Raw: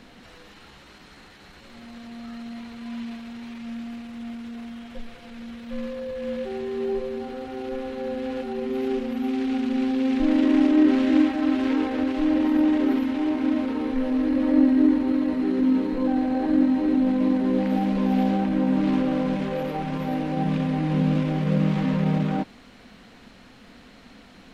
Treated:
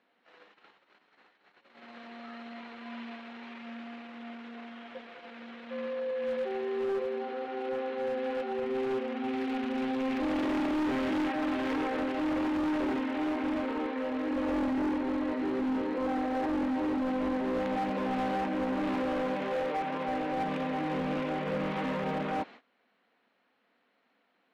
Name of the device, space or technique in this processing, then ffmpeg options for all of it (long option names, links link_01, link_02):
walkie-talkie: -filter_complex "[0:a]asettb=1/sr,asplit=3[link_01][link_02][link_03];[link_01]atrim=end=13.864[link_04];[link_02]atrim=start=13.86:end=14.31,asetpts=PTS-STARTPTS,afade=type=in:duration=0.004:curve=qsin,afade=type=out:start_time=0.446:duration=0.004:curve=qsin,equalizer=frequency=220:width=0.41:gain=-3[link_05];[link_03]atrim=start=14.306[link_06];[link_04][link_05]acrossfade=duration=0.004:curve1=hsin:curve2=qsin[link_07];[link_07][link_06]acrossfade=duration=0.004:curve1=qsin:curve2=hsin,highpass=430,lowpass=2700,asoftclip=type=hard:threshold=-28.5dB,agate=range=-20dB:threshold=-49dB:ratio=16:detection=peak,volume=1dB"